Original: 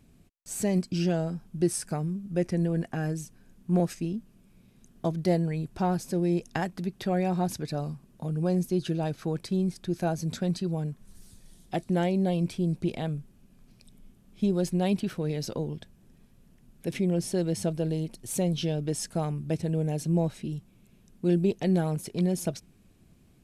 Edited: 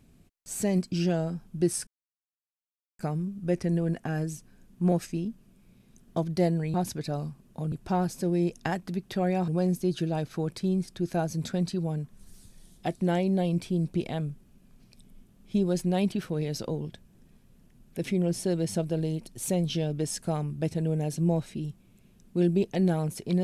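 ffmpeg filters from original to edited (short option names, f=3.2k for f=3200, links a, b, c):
-filter_complex "[0:a]asplit=5[a][b][c][d][e];[a]atrim=end=1.87,asetpts=PTS-STARTPTS,afade=t=out:st=1.866:d=0.004:c=hsin,apad=pad_dur=1.12[f];[b]atrim=start=1.87:end=5.622,asetpts=PTS-STARTPTS,afade=t=in:d=0.004:c=hsin[g];[c]atrim=start=7.378:end=8.362[h];[d]atrim=start=5.618:end=7.382[i];[e]atrim=start=8.358[j];[f][g]concat=n=2:v=0:a=1[k];[k][h]acrossfade=d=0.004:c1=hsin:c2=hsin[l];[l][i]acrossfade=d=0.004:c1=hsin:c2=hsin[m];[m][j]acrossfade=d=0.004:c1=hsin:c2=hsin"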